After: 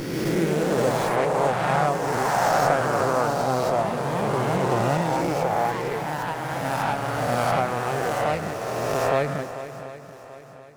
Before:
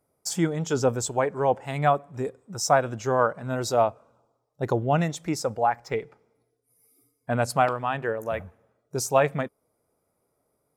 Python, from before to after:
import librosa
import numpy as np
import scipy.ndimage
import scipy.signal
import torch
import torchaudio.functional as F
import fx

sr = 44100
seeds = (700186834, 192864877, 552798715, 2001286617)

p1 = fx.spec_swells(x, sr, rise_s=2.64)
p2 = p1 + fx.echo_swing(p1, sr, ms=735, ratio=1.5, feedback_pct=39, wet_db=-13.0, dry=0)
p3 = fx.echo_pitch(p2, sr, ms=133, semitones=2, count=3, db_per_echo=-3.0)
p4 = fx.low_shelf(p3, sr, hz=430.0, db=5.0)
p5 = fx.running_max(p4, sr, window=5)
y = F.gain(torch.from_numpy(p5), -7.0).numpy()